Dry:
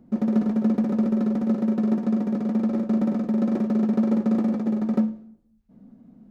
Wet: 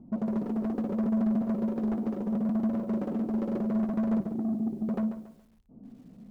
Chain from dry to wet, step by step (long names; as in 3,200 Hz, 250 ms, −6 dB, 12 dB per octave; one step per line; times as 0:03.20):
adaptive Wiener filter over 25 samples
0:04.20–0:04.89: inverse Chebyshev low-pass filter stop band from 1,500 Hz, stop band 70 dB
in parallel at 0 dB: downward compressor 5 to 1, threshold −31 dBFS, peak gain reduction 13 dB
on the sum: flanger 0.77 Hz, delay 0.9 ms, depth 2 ms, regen −58%
soft clipping −25 dBFS, distortion −12 dB
feedback echo at a low word length 140 ms, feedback 35%, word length 10 bits, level −10 dB